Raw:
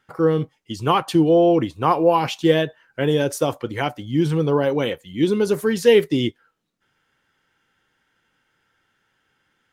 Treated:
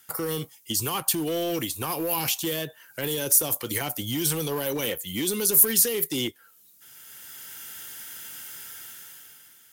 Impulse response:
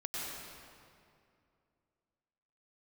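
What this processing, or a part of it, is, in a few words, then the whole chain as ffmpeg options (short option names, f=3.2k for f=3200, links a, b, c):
FM broadcast chain: -filter_complex "[0:a]highpass=49,dynaudnorm=f=170:g=11:m=16dB,acrossover=split=360|2100[a][b][c];[a]acompressor=threshold=-30dB:ratio=4[d];[b]acompressor=threshold=-28dB:ratio=4[e];[c]acompressor=threshold=-42dB:ratio=4[f];[d][e][f]amix=inputs=3:normalize=0,aemphasis=mode=production:type=75fm,alimiter=limit=-20dB:level=0:latency=1:release=20,asoftclip=type=hard:threshold=-23dB,lowpass=f=15k:w=0.5412,lowpass=f=15k:w=1.3066,aemphasis=mode=production:type=75fm"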